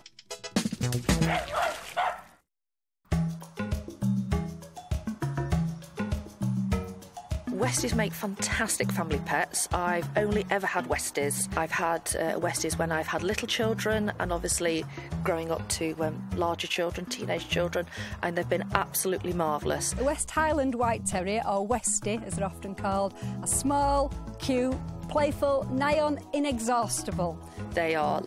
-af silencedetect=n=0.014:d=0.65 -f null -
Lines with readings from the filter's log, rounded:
silence_start: 2.19
silence_end: 3.12 | silence_duration: 0.92